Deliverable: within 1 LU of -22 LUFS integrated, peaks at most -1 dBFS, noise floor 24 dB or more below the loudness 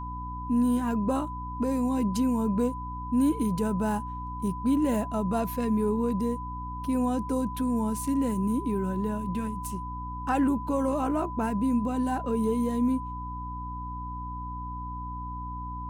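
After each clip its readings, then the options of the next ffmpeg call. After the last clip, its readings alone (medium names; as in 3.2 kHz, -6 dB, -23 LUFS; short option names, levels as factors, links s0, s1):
hum 60 Hz; highest harmonic 300 Hz; hum level -36 dBFS; steady tone 1 kHz; tone level -36 dBFS; loudness -29.0 LUFS; peak level -15.0 dBFS; loudness target -22.0 LUFS
-> -af "bandreject=f=60:t=h:w=4,bandreject=f=120:t=h:w=4,bandreject=f=180:t=h:w=4,bandreject=f=240:t=h:w=4,bandreject=f=300:t=h:w=4"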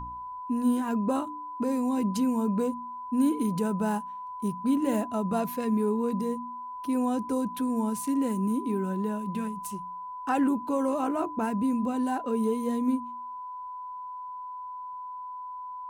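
hum not found; steady tone 1 kHz; tone level -36 dBFS
-> -af "bandreject=f=1000:w=30"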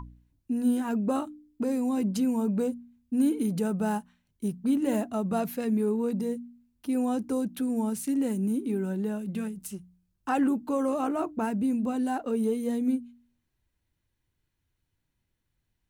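steady tone not found; loudness -29.0 LUFS; peak level -15.5 dBFS; loudness target -22.0 LUFS
-> -af "volume=2.24"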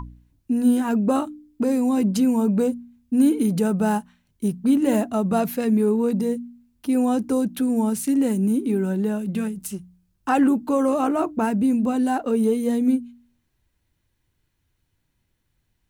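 loudness -22.0 LUFS; peak level -8.5 dBFS; noise floor -72 dBFS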